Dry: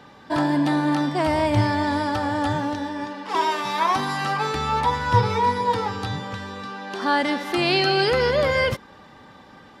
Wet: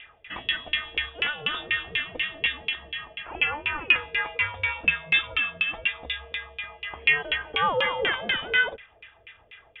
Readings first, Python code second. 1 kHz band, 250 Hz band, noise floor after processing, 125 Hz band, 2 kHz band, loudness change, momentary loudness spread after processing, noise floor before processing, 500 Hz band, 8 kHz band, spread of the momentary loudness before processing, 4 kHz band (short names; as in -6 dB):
-11.5 dB, -22.0 dB, -58 dBFS, -19.0 dB, +3.5 dB, -3.0 dB, 12 LU, -48 dBFS, -11.5 dB, under -30 dB, 10 LU, +1.0 dB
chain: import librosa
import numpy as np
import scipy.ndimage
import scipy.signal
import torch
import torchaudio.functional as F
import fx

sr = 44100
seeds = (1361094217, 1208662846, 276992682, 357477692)

y = fx.harmonic_tremolo(x, sr, hz=4.4, depth_pct=50, crossover_hz=1500.0)
y = fx.freq_invert(y, sr, carrier_hz=3600)
y = fx.filter_lfo_lowpass(y, sr, shape='saw_down', hz=4.1, low_hz=440.0, high_hz=2500.0, q=3.2)